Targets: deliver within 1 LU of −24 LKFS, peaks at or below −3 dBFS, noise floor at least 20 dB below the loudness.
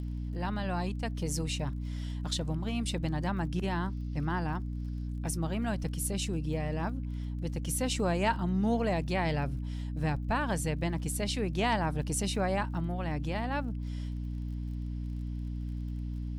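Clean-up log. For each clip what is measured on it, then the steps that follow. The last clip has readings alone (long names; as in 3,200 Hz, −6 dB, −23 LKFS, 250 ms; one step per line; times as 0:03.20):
crackle rate 34 per second; mains hum 60 Hz; hum harmonics up to 300 Hz; level of the hum −33 dBFS; integrated loudness −33.0 LKFS; sample peak −15.0 dBFS; target loudness −24.0 LKFS
→ click removal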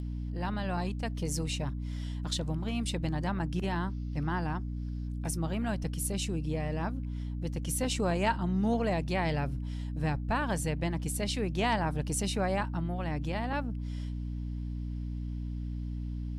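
crackle rate 0.24 per second; mains hum 60 Hz; hum harmonics up to 300 Hz; level of the hum −33 dBFS
→ mains-hum notches 60/120/180/240/300 Hz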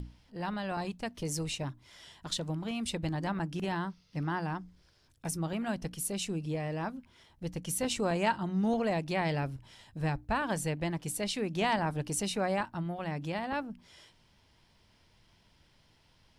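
mains hum none found; integrated loudness −34.0 LKFS; sample peak −16.0 dBFS; target loudness −24.0 LKFS
→ level +10 dB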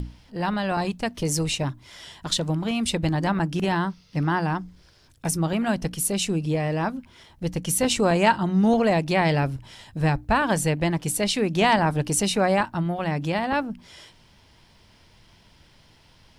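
integrated loudness −24.0 LKFS; sample peak −6.0 dBFS; background noise floor −56 dBFS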